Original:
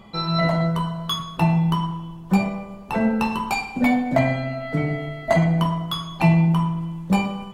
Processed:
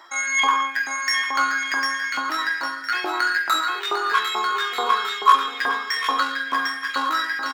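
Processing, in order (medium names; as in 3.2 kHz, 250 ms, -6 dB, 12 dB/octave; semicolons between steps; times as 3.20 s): hard clipper -12 dBFS, distortion -21 dB; dynamic bell 250 Hz, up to +7 dB, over -34 dBFS, Q 1.5; pitch shift +8.5 st; on a send: bouncing-ball echo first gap 750 ms, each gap 0.65×, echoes 5; on the sum: peak limiter -9.5 dBFS, peak gain reduction 6 dB; LFO high-pass saw up 2.3 Hz 850–2100 Hz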